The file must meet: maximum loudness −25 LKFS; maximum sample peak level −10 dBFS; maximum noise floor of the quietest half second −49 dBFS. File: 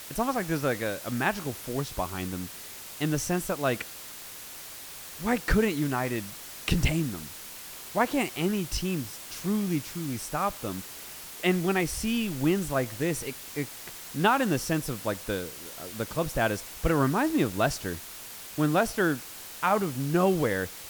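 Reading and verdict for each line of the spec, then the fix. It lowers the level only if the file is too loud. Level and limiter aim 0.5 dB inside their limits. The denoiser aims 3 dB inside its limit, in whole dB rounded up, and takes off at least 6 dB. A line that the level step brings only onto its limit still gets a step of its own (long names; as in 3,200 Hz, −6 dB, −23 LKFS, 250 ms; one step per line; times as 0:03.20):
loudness −29.0 LKFS: in spec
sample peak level −9.5 dBFS: out of spec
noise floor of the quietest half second −43 dBFS: out of spec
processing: broadband denoise 9 dB, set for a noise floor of −43 dBFS
brickwall limiter −10.5 dBFS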